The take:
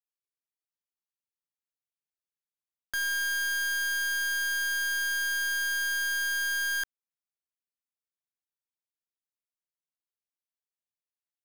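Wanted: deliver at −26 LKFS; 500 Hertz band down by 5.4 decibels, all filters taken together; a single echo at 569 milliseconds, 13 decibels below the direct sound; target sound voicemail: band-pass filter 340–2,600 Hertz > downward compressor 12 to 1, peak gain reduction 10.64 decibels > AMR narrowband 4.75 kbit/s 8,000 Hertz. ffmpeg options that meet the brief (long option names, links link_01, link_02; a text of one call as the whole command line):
ffmpeg -i in.wav -af "highpass=340,lowpass=2600,equalizer=frequency=500:width_type=o:gain=-6.5,aecho=1:1:569:0.224,acompressor=threshold=-39dB:ratio=12,volume=14dB" -ar 8000 -c:a libopencore_amrnb -b:a 4750 out.amr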